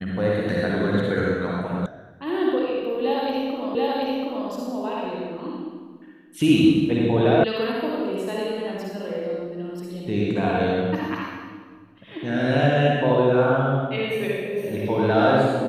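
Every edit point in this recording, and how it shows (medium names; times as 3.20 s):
1.86 s: sound stops dead
3.75 s: repeat of the last 0.73 s
7.44 s: sound stops dead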